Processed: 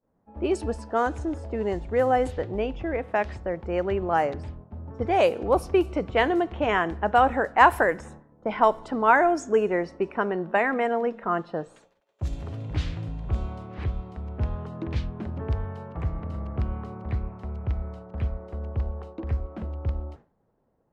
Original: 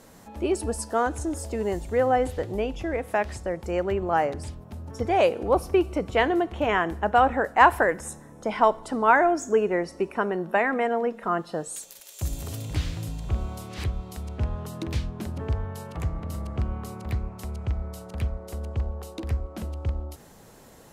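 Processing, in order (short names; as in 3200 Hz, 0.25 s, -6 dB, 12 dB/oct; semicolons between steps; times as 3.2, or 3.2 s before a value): expander -38 dBFS; low-pass opened by the level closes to 960 Hz, open at -17 dBFS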